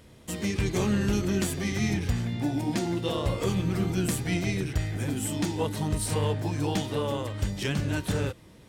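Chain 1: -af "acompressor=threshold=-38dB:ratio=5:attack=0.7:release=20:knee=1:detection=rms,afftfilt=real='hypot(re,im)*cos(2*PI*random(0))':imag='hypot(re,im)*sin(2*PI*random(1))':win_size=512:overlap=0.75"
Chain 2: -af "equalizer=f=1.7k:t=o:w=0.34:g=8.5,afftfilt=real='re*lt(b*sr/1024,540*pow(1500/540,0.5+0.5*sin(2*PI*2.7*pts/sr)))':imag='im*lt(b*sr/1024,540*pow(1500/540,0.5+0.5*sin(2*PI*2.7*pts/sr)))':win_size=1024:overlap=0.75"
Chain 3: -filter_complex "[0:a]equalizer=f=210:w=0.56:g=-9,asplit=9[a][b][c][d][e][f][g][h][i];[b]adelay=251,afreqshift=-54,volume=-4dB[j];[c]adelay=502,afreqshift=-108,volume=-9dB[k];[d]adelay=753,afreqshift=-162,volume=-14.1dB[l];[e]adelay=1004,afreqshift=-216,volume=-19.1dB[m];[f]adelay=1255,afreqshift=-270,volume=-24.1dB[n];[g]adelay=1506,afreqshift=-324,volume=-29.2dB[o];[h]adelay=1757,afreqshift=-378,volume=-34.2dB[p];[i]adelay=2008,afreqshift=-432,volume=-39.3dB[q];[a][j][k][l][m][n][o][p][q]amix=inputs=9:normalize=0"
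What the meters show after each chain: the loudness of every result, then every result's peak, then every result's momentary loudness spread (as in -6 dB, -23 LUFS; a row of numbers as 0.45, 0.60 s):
-47.0, -29.5, -31.5 LUFS; -32.5, -17.0, -16.0 dBFS; 2, 5, 3 LU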